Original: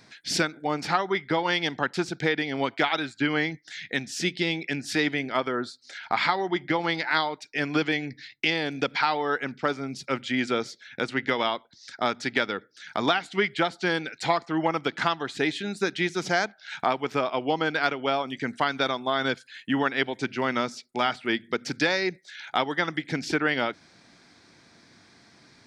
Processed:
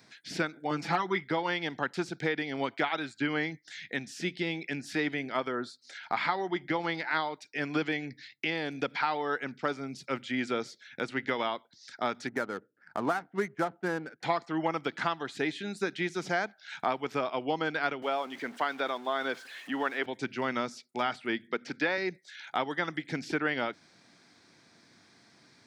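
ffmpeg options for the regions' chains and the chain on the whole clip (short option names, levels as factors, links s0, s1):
-filter_complex "[0:a]asettb=1/sr,asplit=3[s0][s1][s2];[s0]atrim=end=0.704[s3];[s1]atrim=start=0.7:end=1.24,asetpts=PTS-STARTPTS,afade=t=in:d=0.004:c=qsin,afade=t=out:st=0.536:d=0.004:c=qsin,aecho=1:1:6:0.86,atrim=end_sample=23814,asoftclip=type=hard:threshold=0.251[s4];[s2]atrim=start=1.236[s5];[s3][s4]acrossfade=d=0.004:c1=hsin:c2=qsin[s6];[s6][s5]acrossfade=d=0.004:c1=qsin:c2=hsin,asettb=1/sr,asplit=3[s7][s8][s9];[s7]atrim=end=12.274[s10];[s8]atrim=start=12.27:end=14.23,asetpts=PTS-STARTPTS,afade=t=in:d=0.004:c=qsin,afade=t=out:st=1.956:d=0.004:c=qsin,lowpass=f=1700:w=0.5412,lowpass=f=1700:w=1.3066,adynamicsmooth=sensitivity=7:basefreq=920[s11];[s9]atrim=start=14.226[s12];[s10][s11]acrossfade=d=0.004:c1=hsin:c2=qsin[s13];[s13][s12]acrossfade=d=0.004:c1=qsin:c2=hsin,asettb=1/sr,asplit=3[s14][s15][s16];[s14]atrim=end=18.024[s17];[s15]atrim=start=18.02:end=20.06,asetpts=PTS-STARTPTS,afade=t=in:d=0.004:c=qsin,afade=t=out:st=2.036:d=0.004:c=qsin,aeval=exprs='val(0)+0.5*0.0141*sgn(val(0))':c=same,highpass=320,aemphasis=mode=reproduction:type=50kf[s18];[s16]atrim=start=20.056[s19];[s17][s18]acrossfade=d=0.004:c1=hsin:c2=qsin[s20];[s20][s19]acrossfade=d=0.004:c1=qsin:c2=hsin,asettb=1/sr,asplit=3[s21][s22][s23];[s21]atrim=end=21.474[s24];[s22]atrim=start=21.47:end=21.98,asetpts=PTS-STARTPTS,afade=t=in:d=0.004:c=qsin,afade=t=out:st=0.506:d=0.004:c=qsin,highpass=180,lowpass=2500,aemphasis=mode=production:type=75kf[s25];[s23]atrim=start=21.976[s26];[s24][s25]acrossfade=d=0.004:c1=hsin:c2=qsin[s27];[s27][s26]acrossfade=d=0.004:c1=qsin:c2=hsin,highpass=97,acrossover=split=2900[s28][s29];[s29]acompressor=threshold=0.0112:ratio=4:attack=1:release=60[s30];[s28][s30]amix=inputs=2:normalize=0,highshelf=f=9800:g=4.5,volume=0.562"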